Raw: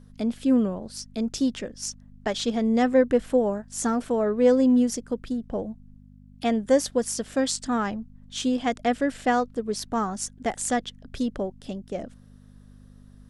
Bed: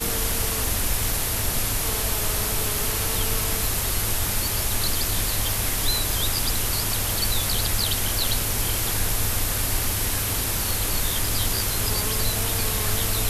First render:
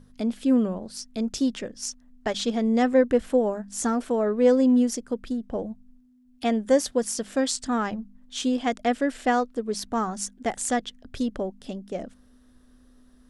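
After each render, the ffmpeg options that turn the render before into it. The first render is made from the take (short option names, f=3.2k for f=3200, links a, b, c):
-af "bandreject=f=50:t=h:w=4,bandreject=f=100:t=h:w=4,bandreject=f=150:t=h:w=4,bandreject=f=200:t=h:w=4"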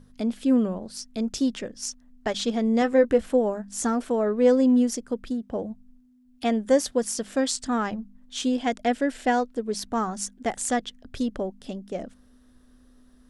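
-filter_complex "[0:a]asettb=1/sr,asplit=3[a][b][c];[a]atrim=end=2.804[d];[b]atrim=start=2.8:end=3.26,asetpts=PTS-STARTPTS,afade=t=in:d=0.004:c=qsin,afade=t=out:st=0.456:d=0.004:c=qsin,asplit=2[e][f];[f]adelay=14,volume=-8.5dB[g];[e][g]amix=inputs=2:normalize=0,atrim=end_sample=20286[h];[c]atrim=start=3.256[i];[d][h]acrossfade=d=0.004:c1=hsin:c2=qsin[j];[j][i]acrossfade=d=0.004:c1=qsin:c2=hsin,asettb=1/sr,asplit=3[k][l][m];[k]atrim=end=5.304[n];[l]atrim=start=5.3:end=5.7,asetpts=PTS-STARTPTS,afade=t=in:d=0.004:c=qsin,afade=t=out:st=0.396:d=0.004:c=qsin,highpass=51[o];[m]atrim=start=5.696[p];[n][o]acrossfade=d=0.004:c1=hsin:c2=qsin[q];[q][p]acrossfade=d=0.004:c1=qsin:c2=hsin,asettb=1/sr,asplit=3[r][s][t];[r]atrim=end=8.464[u];[s]atrim=start=8.46:end=9.79,asetpts=PTS-STARTPTS,afade=t=in:d=0.004:c=qsin,afade=t=out:st=1.326:d=0.004:c=qsin,bandreject=f=1.2k:w=9.4[v];[t]atrim=start=9.786[w];[u][v]acrossfade=d=0.004:c1=hsin:c2=qsin[x];[x][w]acrossfade=d=0.004:c1=qsin:c2=hsin"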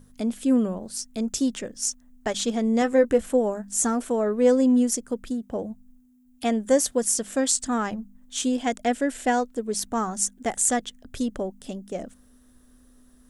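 -af "aexciter=amount=3.2:drive=4.1:freq=6.5k"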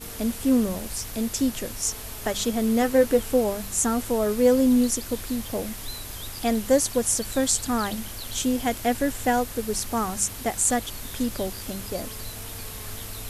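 -filter_complex "[1:a]volume=-12.5dB[a];[0:a][a]amix=inputs=2:normalize=0"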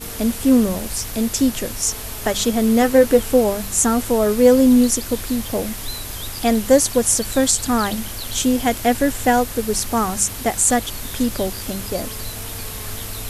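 -af "volume=6.5dB,alimiter=limit=-2dB:level=0:latency=1"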